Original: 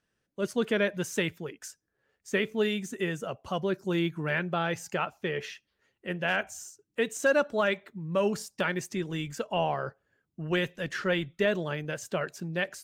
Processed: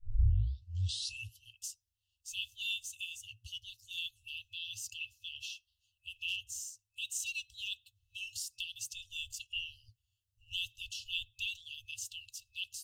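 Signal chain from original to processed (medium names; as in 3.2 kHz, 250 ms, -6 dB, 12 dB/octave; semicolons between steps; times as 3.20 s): tape start-up on the opening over 1.58 s; FFT band-reject 110–2600 Hz; trim +1 dB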